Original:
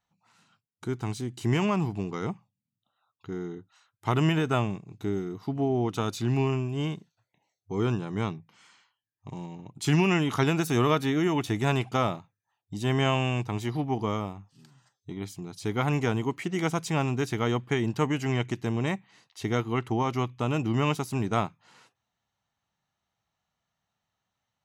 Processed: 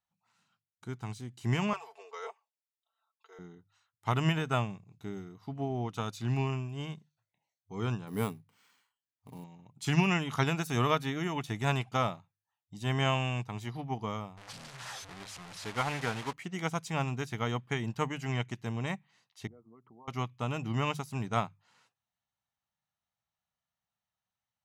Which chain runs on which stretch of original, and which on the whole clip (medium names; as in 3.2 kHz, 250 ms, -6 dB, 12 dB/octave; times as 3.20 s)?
1.73–3.39 s: elliptic high-pass 440 Hz, stop band 60 dB + comb 4.5 ms, depth 94%
8.07–9.44 s: short-mantissa float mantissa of 4-bit + small resonant body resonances 270/430 Hz, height 11 dB, ringing for 60 ms + careless resampling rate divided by 4×, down none, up hold
14.37–16.33 s: one-bit delta coder 64 kbps, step -29.5 dBFS + overdrive pedal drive 8 dB, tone 3.7 kHz, clips at -12.5 dBFS + loudspeaker Doppler distortion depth 0.12 ms
19.47–20.08 s: resonances exaggerated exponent 2 + compression 12:1, threshold -37 dBFS + Butterworth band-pass 470 Hz, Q 0.5
whole clip: peaking EQ 340 Hz -8 dB 0.83 oct; hum notches 50/100/150 Hz; upward expansion 1.5:1, over -40 dBFS